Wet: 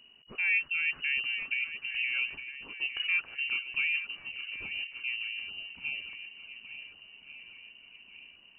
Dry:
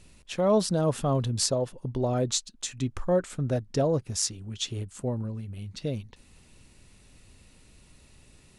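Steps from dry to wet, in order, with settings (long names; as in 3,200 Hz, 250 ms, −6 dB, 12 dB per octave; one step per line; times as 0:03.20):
feedback echo with a long and a short gap by turns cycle 1,436 ms, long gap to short 1.5 to 1, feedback 44%, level −11 dB
voice inversion scrambler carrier 2,900 Hz
level −6 dB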